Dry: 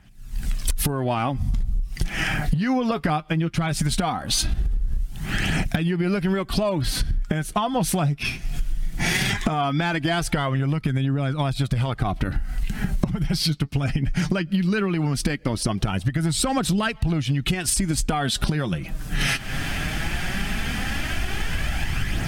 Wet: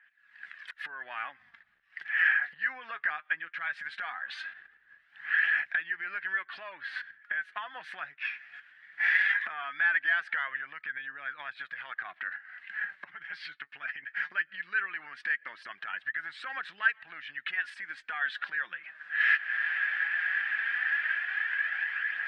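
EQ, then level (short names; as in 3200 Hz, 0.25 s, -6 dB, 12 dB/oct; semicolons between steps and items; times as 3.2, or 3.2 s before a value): resonant high-pass 1700 Hz, resonance Q 8.3; LPF 6900 Hz 12 dB/oct; air absorption 490 m; -6.5 dB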